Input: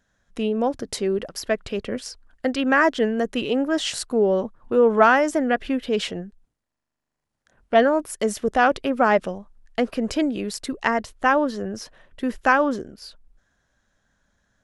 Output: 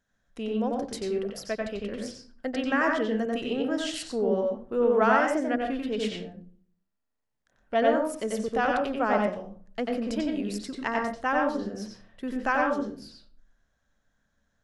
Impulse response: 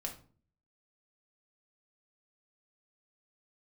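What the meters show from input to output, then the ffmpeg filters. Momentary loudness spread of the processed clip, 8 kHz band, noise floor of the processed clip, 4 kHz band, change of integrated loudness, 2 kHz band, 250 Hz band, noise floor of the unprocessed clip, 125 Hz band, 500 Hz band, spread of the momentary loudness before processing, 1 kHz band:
13 LU, −8.5 dB, −77 dBFS, −7.0 dB, −5.5 dB, −6.5 dB, −5.0 dB, −82 dBFS, −4.5 dB, −5.5 dB, 14 LU, −6.0 dB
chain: -filter_complex "[0:a]asplit=2[link_01][link_02];[1:a]atrim=start_sample=2205,lowpass=5800,adelay=91[link_03];[link_02][link_03]afir=irnorm=-1:irlink=0,volume=0dB[link_04];[link_01][link_04]amix=inputs=2:normalize=0,volume=-9dB"

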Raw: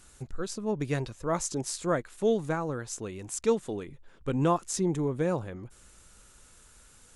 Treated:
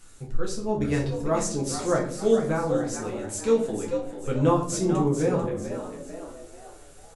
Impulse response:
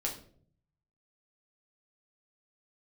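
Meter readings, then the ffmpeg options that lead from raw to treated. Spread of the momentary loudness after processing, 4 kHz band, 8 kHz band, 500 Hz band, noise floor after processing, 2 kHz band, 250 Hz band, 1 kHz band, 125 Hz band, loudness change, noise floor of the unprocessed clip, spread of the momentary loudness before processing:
16 LU, +3.0 dB, +2.5 dB, +5.5 dB, −47 dBFS, +3.0 dB, +5.0 dB, +3.5 dB, +4.5 dB, +4.5 dB, −57 dBFS, 12 LU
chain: -filter_complex "[0:a]asplit=6[link_01][link_02][link_03][link_04][link_05][link_06];[link_02]adelay=443,afreqshift=71,volume=-9dB[link_07];[link_03]adelay=886,afreqshift=142,volume=-16.3dB[link_08];[link_04]adelay=1329,afreqshift=213,volume=-23.7dB[link_09];[link_05]adelay=1772,afreqshift=284,volume=-31dB[link_10];[link_06]adelay=2215,afreqshift=355,volume=-38.3dB[link_11];[link_01][link_07][link_08][link_09][link_10][link_11]amix=inputs=6:normalize=0[link_12];[1:a]atrim=start_sample=2205[link_13];[link_12][link_13]afir=irnorm=-1:irlink=0"

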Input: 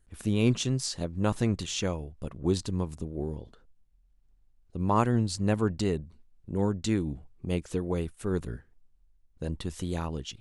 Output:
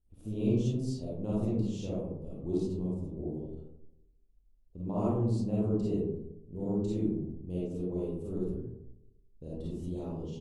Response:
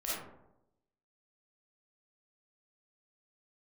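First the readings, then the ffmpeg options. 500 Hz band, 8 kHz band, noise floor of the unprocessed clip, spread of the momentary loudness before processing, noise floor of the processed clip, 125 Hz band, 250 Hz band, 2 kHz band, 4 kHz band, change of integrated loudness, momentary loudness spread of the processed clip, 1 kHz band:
−3.0 dB, below −15 dB, −64 dBFS, 11 LU, −64 dBFS, −3.5 dB, −2.0 dB, below −20 dB, below −15 dB, −3.5 dB, 12 LU, −12.5 dB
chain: -filter_complex "[0:a]firequalizer=gain_entry='entry(410,0);entry(1700,-26);entry(2700,-13)':delay=0.05:min_phase=1[link_01];[1:a]atrim=start_sample=2205[link_02];[link_01][link_02]afir=irnorm=-1:irlink=0,volume=-6.5dB"

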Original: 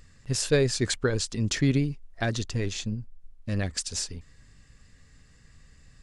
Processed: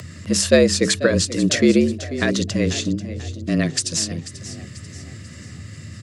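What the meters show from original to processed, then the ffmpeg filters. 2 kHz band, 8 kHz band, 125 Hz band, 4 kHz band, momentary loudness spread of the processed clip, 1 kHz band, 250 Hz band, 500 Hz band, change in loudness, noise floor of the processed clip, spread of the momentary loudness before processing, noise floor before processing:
+9.0 dB, +9.0 dB, +3.5 dB, +9.0 dB, 21 LU, +6.0 dB, +11.0 dB, +10.0 dB, +8.5 dB, −39 dBFS, 11 LU, −57 dBFS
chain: -filter_complex "[0:a]bandreject=frequency=60:width_type=h:width=6,bandreject=frequency=120:width_type=h:width=6,bandreject=frequency=180:width_type=h:width=6,bandreject=frequency=240:width_type=h:width=6,bandreject=frequency=300:width_type=h:width=6,bandreject=frequency=360:width_type=h:width=6,asplit=2[link_01][link_02];[link_02]acompressor=mode=upward:threshold=-29dB:ratio=2.5,volume=0.5dB[link_03];[link_01][link_03]amix=inputs=2:normalize=0,asuperstop=centerf=740:order=4:qfactor=3.3,asplit=5[link_04][link_05][link_06][link_07][link_08];[link_05]adelay=489,afreqshift=33,volume=-14.5dB[link_09];[link_06]adelay=978,afreqshift=66,volume=-21.6dB[link_10];[link_07]adelay=1467,afreqshift=99,volume=-28.8dB[link_11];[link_08]adelay=1956,afreqshift=132,volume=-35.9dB[link_12];[link_04][link_09][link_10][link_11][link_12]amix=inputs=5:normalize=0,afreqshift=78,volume=2.5dB"

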